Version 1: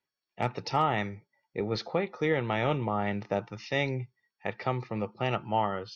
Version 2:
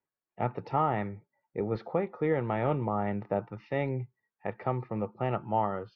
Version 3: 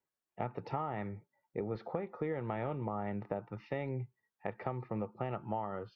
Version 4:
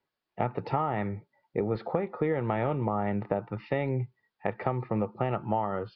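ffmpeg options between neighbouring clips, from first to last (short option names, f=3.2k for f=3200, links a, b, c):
-af "lowpass=1.4k"
-af "acompressor=threshold=-32dB:ratio=6,volume=-1dB"
-af "aresample=11025,aresample=44100,volume=8.5dB"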